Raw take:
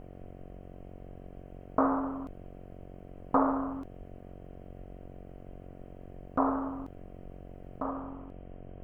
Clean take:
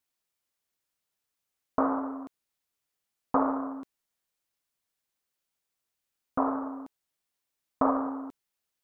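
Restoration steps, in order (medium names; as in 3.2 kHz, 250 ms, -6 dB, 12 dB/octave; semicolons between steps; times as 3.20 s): de-hum 45.9 Hz, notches 16; de-plosive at 3.98 s; noise reduction 30 dB, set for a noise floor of -48 dBFS; gain correction +10 dB, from 7.80 s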